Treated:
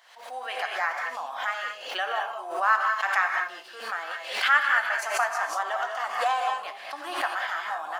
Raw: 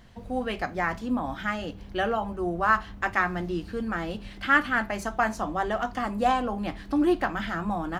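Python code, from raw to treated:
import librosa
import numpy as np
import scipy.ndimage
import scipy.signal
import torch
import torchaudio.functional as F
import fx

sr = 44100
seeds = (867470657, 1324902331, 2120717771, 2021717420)

y = scipy.signal.sosfilt(scipy.signal.butter(4, 720.0, 'highpass', fs=sr, output='sos'), x)
y = fx.rev_gated(y, sr, seeds[0], gate_ms=230, shape='rising', drr_db=2.0)
y = fx.pre_swell(y, sr, db_per_s=77.0)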